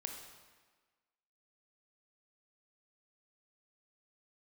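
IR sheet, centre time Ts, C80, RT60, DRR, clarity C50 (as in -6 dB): 43 ms, 6.5 dB, 1.4 s, 2.5 dB, 4.5 dB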